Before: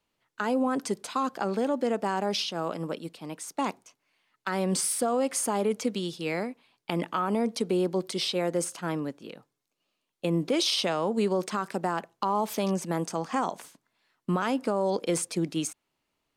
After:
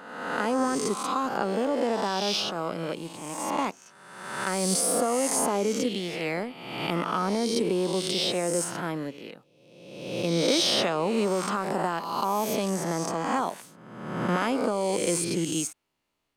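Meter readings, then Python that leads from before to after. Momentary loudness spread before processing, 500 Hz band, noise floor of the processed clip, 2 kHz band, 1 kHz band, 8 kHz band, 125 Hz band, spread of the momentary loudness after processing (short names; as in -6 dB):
9 LU, +1.5 dB, -58 dBFS, +3.5 dB, +2.0 dB, +4.0 dB, +0.5 dB, 11 LU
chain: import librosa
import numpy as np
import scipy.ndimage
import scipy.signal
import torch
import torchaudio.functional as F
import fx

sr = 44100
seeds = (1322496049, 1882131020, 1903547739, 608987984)

p1 = fx.spec_swells(x, sr, rise_s=1.27)
p2 = np.sign(p1) * np.maximum(np.abs(p1) - 10.0 ** (-37.0 / 20.0), 0.0)
p3 = p1 + (p2 * 10.0 ** (-11.0 / 20.0))
y = p3 * 10.0 ** (-3.0 / 20.0)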